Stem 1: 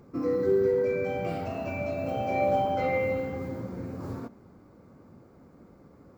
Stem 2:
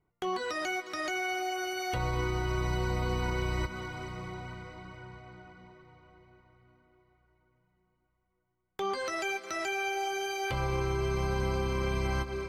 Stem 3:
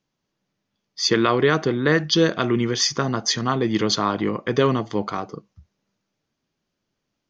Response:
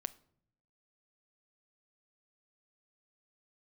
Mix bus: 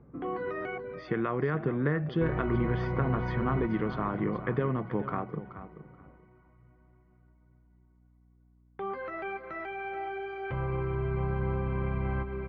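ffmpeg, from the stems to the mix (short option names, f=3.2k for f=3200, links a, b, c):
-filter_complex "[0:a]acompressor=threshold=-32dB:ratio=6,volume=-6dB[a];[1:a]volume=-3dB,asplit=3[b][c][d];[b]atrim=end=0.78,asetpts=PTS-STARTPTS,afade=t=out:st=0.776:d=0.004:c=hsin[e];[c]atrim=start=0.78:end=2.21,asetpts=PTS-STARTPTS,volume=0[f];[d]atrim=start=2.21,asetpts=PTS-STARTPTS,afade=t=in:d=0.004:c=hsin[g];[e][f][g]concat=n=3:v=0:a=1,asplit=2[h][i];[i]volume=-11dB[j];[2:a]acompressor=threshold=-22dB:ratio=6,volume=-4.5dB,asplit=3[k][l][m];[l]volume=-13dB[n];[m]apad=whole_len=272341[o];[a][o]sidechaincompress=threshold=-42dB:ratio=8:attack=16:release=130[p];[j][n]amix=inputs=2:normalize=0,aecho=0:1:429|858|1287:1|0.17|0.0289[q];[p][h][k][q]amix=inputs=4:normalize=0,lowpass=f=2.1k:w=0.5412,lowpass=f=2.1k:w=1.3066,equalizer=f=150:t=o:w=0.61:g=7.5,aeval=exprs='val(0)+0.000891*(sin(2*PI*60*n/s)+sin(2*PI*2*60*n/s)/2+sin(2*PI*3*60*n/s)/3+sin(2*PI*4*60*n/s)/4+sin(2*PI*5*60*n/s)/5)':c=same"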